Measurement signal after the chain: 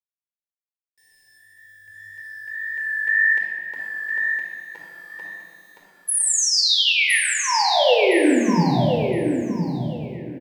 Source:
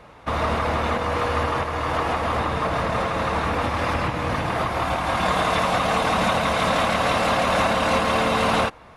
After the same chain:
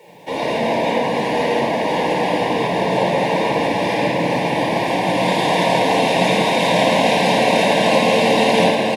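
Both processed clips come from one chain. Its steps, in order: HPF 180 Hz 24 dB/oct; bit-crush 10-bit; flange 1.8 Hz, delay 4.2 ms, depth 7.7 ms, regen +40%; Butterworth band-stop 1300 Hz, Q 1.5; feedback echo 1.014 s, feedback 21%, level -5.5 dB; shoebox room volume 3400 m³, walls mixed, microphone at 4.5 m; gain +4 dB

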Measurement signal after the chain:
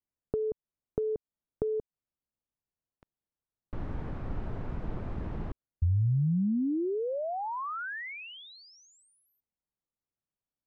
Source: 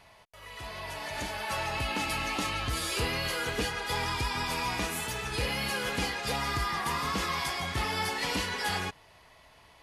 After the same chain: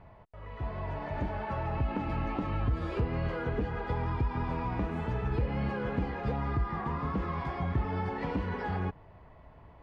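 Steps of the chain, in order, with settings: LPF 1300 Hz 12 dB/oct; compressor 10:1, threshold -34 dBFS; low shelf 360 Hz +11.5 dB

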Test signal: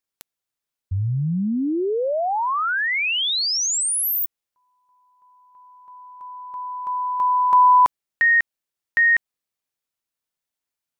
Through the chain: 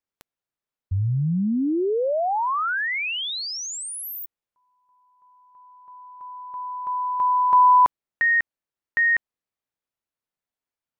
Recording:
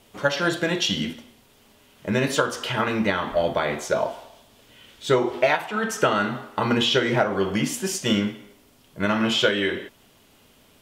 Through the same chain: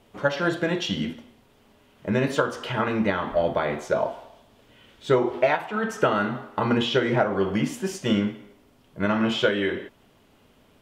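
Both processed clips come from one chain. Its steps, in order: high shelf 3000 Hz -11.5 dB

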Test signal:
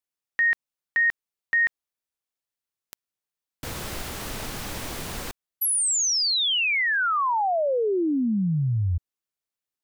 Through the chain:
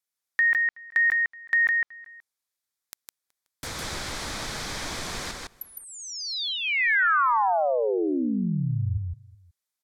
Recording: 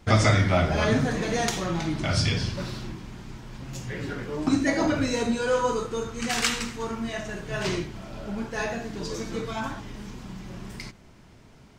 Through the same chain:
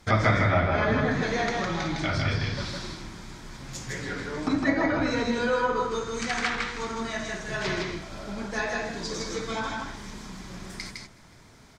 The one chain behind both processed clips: tilt shelf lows -4.5 dB; outdoor echo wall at 64 m, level -24 dB; treble ducked by the level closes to 2100 Hz, closed at -21.5 dBFS; bell 2800 Hz -9 dB 0.25 oct; on a send: echo 0.158 s -3 dB

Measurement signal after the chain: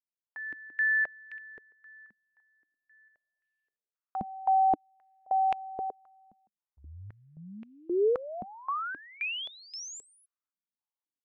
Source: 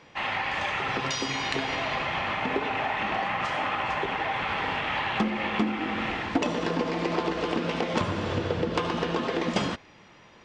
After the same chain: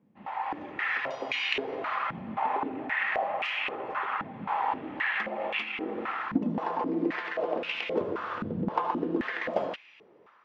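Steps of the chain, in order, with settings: AGC gain up to 7 dB; stepped band-pass 3.8 Hz 210–2600 Hz

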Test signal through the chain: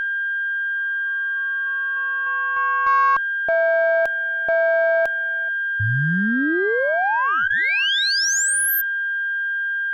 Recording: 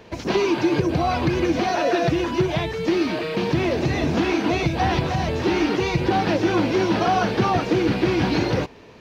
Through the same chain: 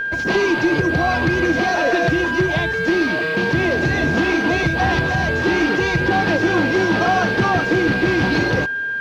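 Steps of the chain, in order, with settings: whine 1600 Hz -23 dBFS; added harmonics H 5 -17 dB, 6 -28 dB, 7 -25 dB, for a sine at -6 dBFS

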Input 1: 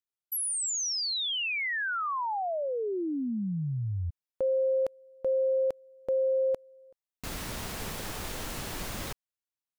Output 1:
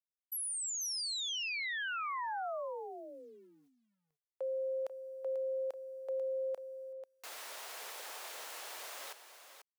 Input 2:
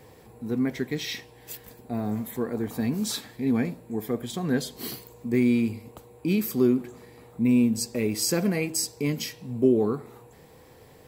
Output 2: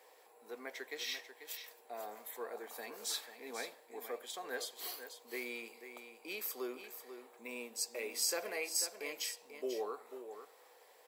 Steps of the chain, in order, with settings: HPF 520 Hz 24 dB/oct; requantised 12-bit, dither none; echo 0.491 s -10 dB; gain -7 dB

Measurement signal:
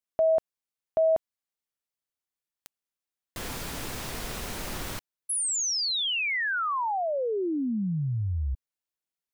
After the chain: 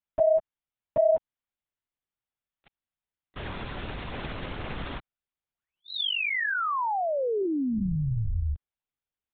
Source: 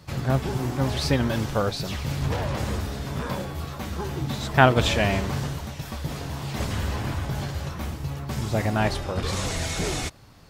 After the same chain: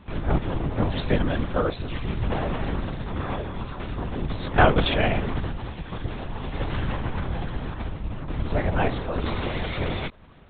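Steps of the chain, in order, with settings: high shelf 2700 Hz -3.5 dB; soft clip -4 dBFS; LPC vocoder at 8 kHz whisper; gain +1 dB

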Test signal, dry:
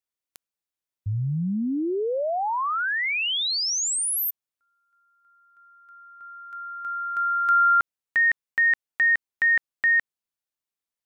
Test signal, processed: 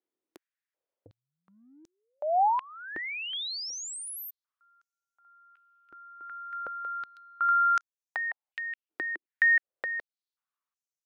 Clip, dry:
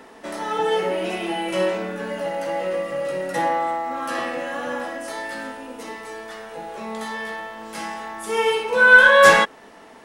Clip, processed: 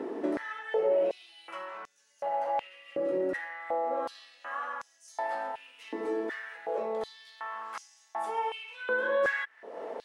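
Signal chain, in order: tilt -4 dB/oct; compressor 3:1, threshold -36 dBFS; stepped high-pass 2.7 Hz 340–6200 Hz

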